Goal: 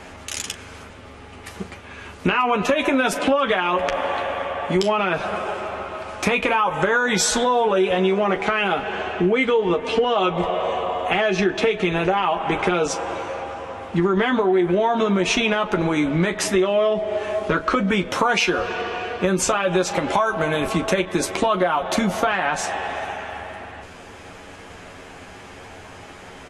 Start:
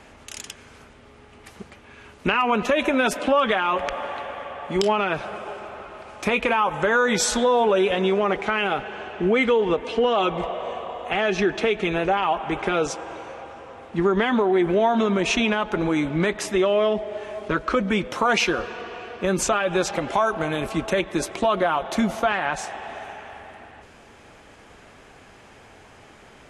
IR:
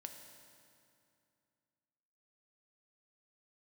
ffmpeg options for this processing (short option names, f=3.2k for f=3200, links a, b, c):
-filter_complex "[0:a]asplit=2[a][b];[b]aecho=0:1:11|40:0.531|0.168[c];[a][c]amix=inputs=2:normalize=0,acompressor=threshold=-25dB:ratio=3,volume=7dB"